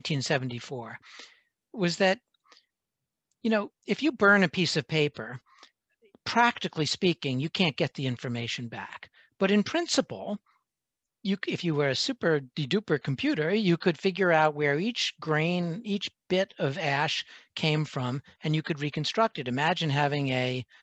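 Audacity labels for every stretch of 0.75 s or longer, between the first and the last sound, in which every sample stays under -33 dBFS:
2.140000	3.450000	silence
5.360000	6.260000	silence
10.360000	11.250000	silence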